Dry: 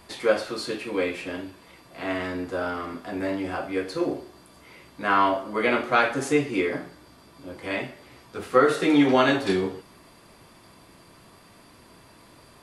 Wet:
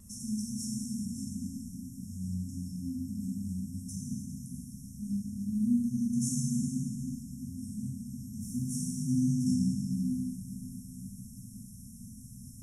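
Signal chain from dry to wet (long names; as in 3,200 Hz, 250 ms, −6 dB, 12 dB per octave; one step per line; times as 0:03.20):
brick-wall band-stop 260–5,300 Hz
dynamic equaliser 100 Hz, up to −4 dB, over −52 dBFS, Q 1.3
in parallel at −1 dB: downward compressor, threshold −47 dBFS, peak gain reduction 20 dB
on the sum: pitch vibrato 0.38 Hz 5.1 cents
dense smooth reverb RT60 3.9 s, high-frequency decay 0.6×, DRR −5 dB
level −2.5 dB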